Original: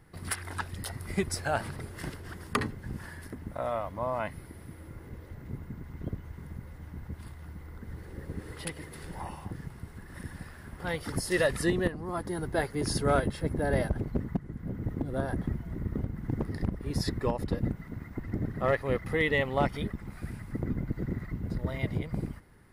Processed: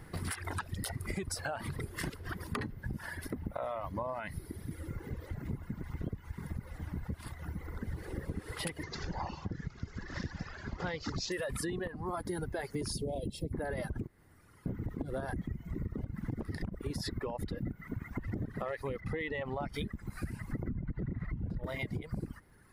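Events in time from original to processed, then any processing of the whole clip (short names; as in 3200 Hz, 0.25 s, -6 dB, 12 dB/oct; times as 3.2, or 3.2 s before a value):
2.19–4.71 bell 7700 Hz -5 dB
8.83–11.32 careless resampling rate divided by 3×, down none, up filtered
12.92–13.53 Butterworth band-stop 1400 Hz, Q 0.55
14.07–14.66 room tone
19–19.74 LPF 2700 Hz 6 dB/oct
20.68–21.64 tone controls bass +6 dB, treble -14 dB
whole clip: limiter -24.5 dBFS; reverb removal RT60 1.6 s; compressor, threshold -42 dBFS; gain +8 dB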